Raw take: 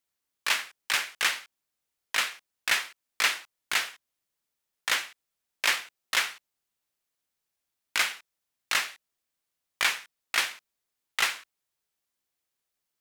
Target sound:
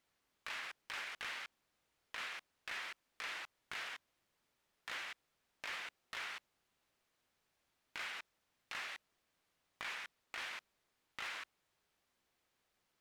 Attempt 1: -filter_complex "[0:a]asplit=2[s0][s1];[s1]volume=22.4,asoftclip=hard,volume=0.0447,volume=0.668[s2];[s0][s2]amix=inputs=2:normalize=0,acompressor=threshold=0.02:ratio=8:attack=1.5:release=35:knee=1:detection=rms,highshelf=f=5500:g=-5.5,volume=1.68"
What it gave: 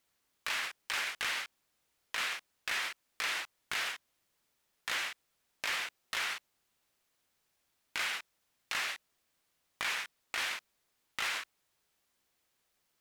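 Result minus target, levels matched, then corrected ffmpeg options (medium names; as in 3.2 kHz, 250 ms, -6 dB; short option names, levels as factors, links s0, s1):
compression: peak gain reduction -8 dB; 8 kHz band +4.0 dB
-filter_complex "[0:a]asplit=2[s0][s1];[s1]volume=22.4,asoftclip=hard,volume=0.0447,volume=0.668[s2];[s0][s2]amix=inputs=2:normalize=0,acompressor=threshold=0.00708:ratio=8:attack=1.5:release=35:knee=1:detection=rms,highshelf=f=5500:g=-15.5,volume=1.68"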